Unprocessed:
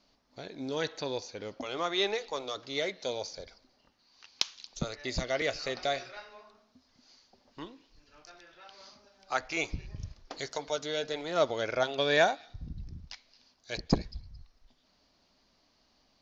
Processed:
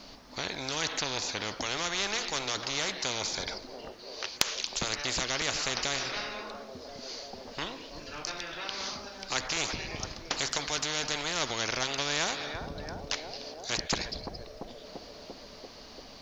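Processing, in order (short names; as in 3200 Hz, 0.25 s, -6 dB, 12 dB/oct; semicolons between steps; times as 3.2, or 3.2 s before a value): on a send: narrowing echo 0.342 s, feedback 72%, band-pass 510 Hz, level -22.5 dB; on the sum: spectral compressor 4:1; gain +2 dB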